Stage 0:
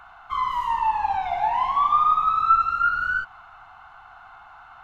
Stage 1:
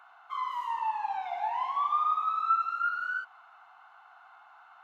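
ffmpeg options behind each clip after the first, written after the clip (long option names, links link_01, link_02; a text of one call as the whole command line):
ffmpeg -i in.wav -af "highpass=430,volume=-8.5dB" out.wav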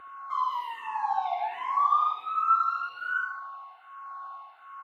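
ffmpeg -i in.wav -filter_complex "[0:a]aeval=exprs='val(0)+0.0112*sin(2*PI*1100*n/s)':channel_layout=same,asplit=2[link_01][link_02];[link_02]aecho=0:1:74|148|222|296|370|444:0.447|0.214|0.103|0.0494|0.0237|0.0114[link_03];[link_01][link_03]amix=inputs=2:normalize=0,asplit=2[link_04][link_05];[link_05]afreqshift=-1.3[link_06];[link_04][link_06]amix=inputs=2:normalize=1,volume=4.5dB" out.wav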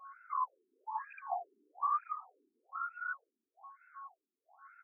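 ffmpeg -i in.wav -af "acrusher=bits=7:mode=log:mix=0:aa=0.000001,volume=22dB,asoftclip=hard,volume=-22dB,afftfilt=real='re*between(b*sr/1024,290*pow(1900/290,0.5+0.5*sin(2*PI*1.1*pts/sr))/1.41,290*pow(1900/290,0.5+0.5*sin(2*PI*1.1*pts/sr))*1.41)':imag='im*between(b*sr/1024,290*pow(1900/290,0.5+0.5*sin(2*PI*1.1*pts/sr))/1.41,290*pow(1900/290,0.5+0.5*sin(2*PI*1.1*pts/sr))*1.41)':win_size=1024:overlap=0.75,volume=-5dB" out.wav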